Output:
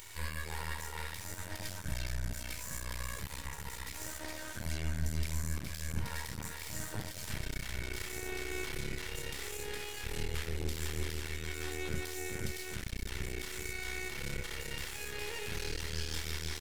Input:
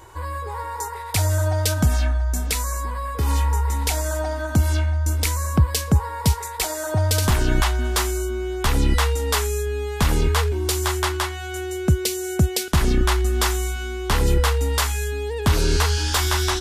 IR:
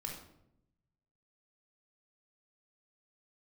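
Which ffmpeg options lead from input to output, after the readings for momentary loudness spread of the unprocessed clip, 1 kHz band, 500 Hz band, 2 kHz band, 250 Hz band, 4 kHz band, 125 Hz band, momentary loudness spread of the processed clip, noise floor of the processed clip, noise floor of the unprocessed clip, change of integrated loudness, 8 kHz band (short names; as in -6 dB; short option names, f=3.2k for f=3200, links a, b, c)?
7 LU, -21.0 dB, -19.0 dB, -12.0 dB, -18.5 dB, -15.0 dB, -19.5 dB, 4 LU, -45 dBFS, -31 dBFS, -17.5 dB, -15.5 dB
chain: -filter_complex "[0:a]equalizer=f=2.1k:t=o:w=0.77:g=2,acrossover=split=2200[a][b];[b]acompressor=mode=upward:threshold=-33dB:ratio=2.5[c];[a][c]amix=inputs=2:normalize=0,highshelf=f=1.5k:t=q:w=1.5:g=8.5,acompressor=threshold=-20dB:ratio=6,aecho=1:1:413|826|1239|1652|2065|2478|2891:0.501|0.276|0.152|0.0834|0.0459|0.0252|0.0139,tremolo=f=84:d=0.462,alimiter=limit=-18dB:level=0:latency=1:release=120[d];[1:a]atrim=start_sample=2205,atrim=end_sample=4410[e];[d][e]afir=irnorm=-1:irlink=0,aeval=exprs='max(val(0),0)':c=same,volume=-6.5dB"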